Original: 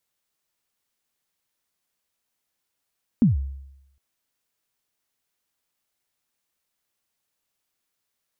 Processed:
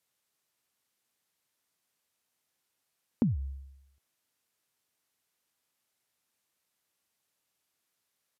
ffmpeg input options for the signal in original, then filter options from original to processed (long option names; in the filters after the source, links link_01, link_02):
-f lavfi -i "aevalsrc='0.282*pow(10,-3*t/0.86)*sin(2*PI*(260*0.143/log(68/260)*(exp(log(68/260)*min(t,0.143)/0.143)-1)+68*max(t-0.143,0)))':duration=0.76:sample_rate=44100"
-af "highpass=80,acompressor=threshold=-25dB:ratio=6,aresample=32000,aresample=44100"